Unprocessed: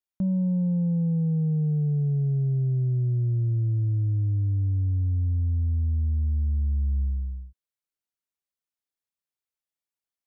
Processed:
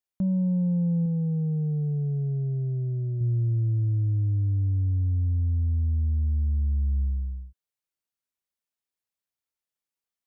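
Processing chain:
0:01.05–0:03.21: dynamic equaliser 100 Hz, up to −6 dB, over −38 dBFS, Q 1.4

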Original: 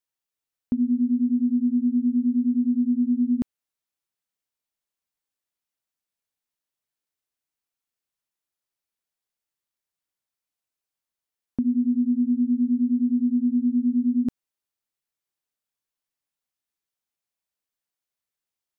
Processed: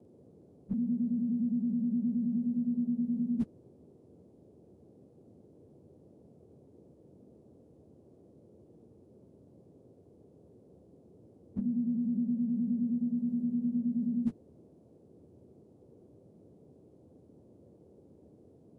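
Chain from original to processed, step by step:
partials spread apart or drawn together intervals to 89%
formants moved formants −3 semitones
noise in a band 76–480 Hz −58 dBFS

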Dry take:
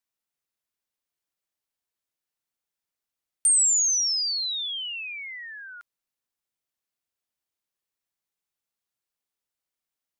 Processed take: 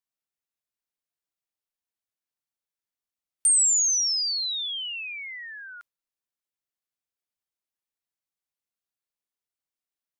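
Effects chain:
noise reduction from a noise print of the clip's start 6 dB

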